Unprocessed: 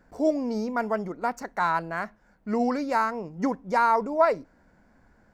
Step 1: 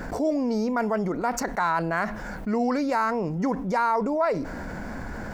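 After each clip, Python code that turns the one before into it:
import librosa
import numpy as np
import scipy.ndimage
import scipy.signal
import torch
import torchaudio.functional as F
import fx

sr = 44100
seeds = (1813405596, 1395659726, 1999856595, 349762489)

y = fx.env_flatten(x, sr, amount_pct=70)
y = y * 10.0 ** (-5.0 / 20.0)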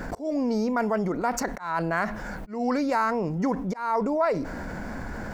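y = fx.auto_swell(x, sr, attack_ms=230.0)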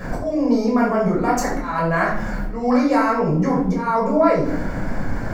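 y = fx.room_shoebox(x, sr, seeds[0], volume_m3=790.0, walls='furnished', distance_m=5.8)
y = y * 10.0 ** (-1.5 / 20.0)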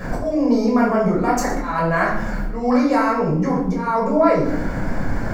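y = fx.rider(x, sr, range_db=3, speed_s=2.0)
y = y + 10.0 ** (-14.5 / 20.0) * np.pad(y, (int(118 * sr / 1000.0), 0))[:len(y)]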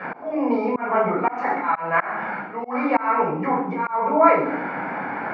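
y = fx.cabinet(x, sr, low_hz=210.0, low_slope=24, high_hz=2900.0, hz=(220.0, 330.0, 570.0, 850.0, 1300.0, 2300.0), db=(-7, -4, -4, 10, 6, 9))
y = fx.auto_swell(y, sr, attack_ms=235.0)
y = y * 10.0 ** (-1.0 / 20.0)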